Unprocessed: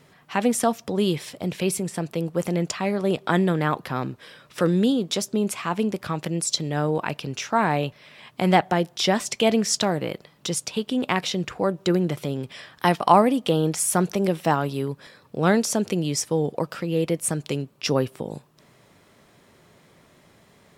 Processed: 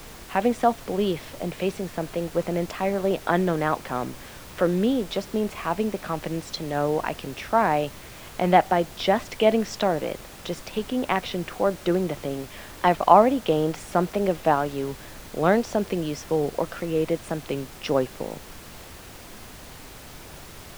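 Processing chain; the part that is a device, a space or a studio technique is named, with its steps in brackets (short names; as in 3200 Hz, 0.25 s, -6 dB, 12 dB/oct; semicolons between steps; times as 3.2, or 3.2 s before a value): horn gramophone (BPF 180–3100 Hz; bell 660 Hz +5 dB; wow and flutter; pink noise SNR 17 dB); gain -1.5 dB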